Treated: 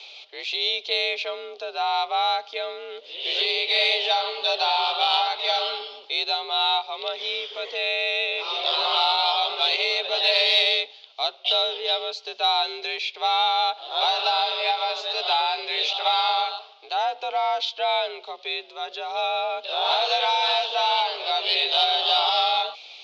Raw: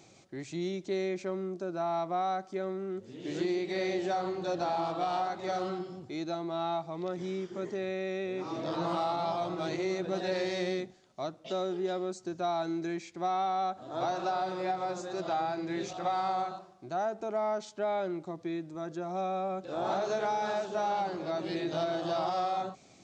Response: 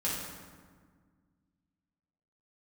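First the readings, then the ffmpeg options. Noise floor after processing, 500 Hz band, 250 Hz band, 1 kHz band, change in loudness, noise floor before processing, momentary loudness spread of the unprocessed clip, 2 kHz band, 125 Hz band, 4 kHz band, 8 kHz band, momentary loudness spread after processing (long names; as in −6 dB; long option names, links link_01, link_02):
−46 dBFS, +3.0 dB, below −15 dB, +8.5 dB, +11.0 dB, −58 dBFS, 6 LU, +15.0 dB, below −40 dB, +25.0 dB, can't be measured, 11 LU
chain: -af "highpass=frequency=470:width_type=q:width=0.5412,highpass=frequency=470:width_type=q:width=1.307,lowpass=frequency=3500:width_type=q:width=0.5176,lowpass=frequency=3500:width_type=q:width=0.7071,lowpass=frequency=3500:width_type=q:width=1.932,afreqshift=60,aexciter=amount=8:drive=9.2:freq=2700,volume=7.5dB"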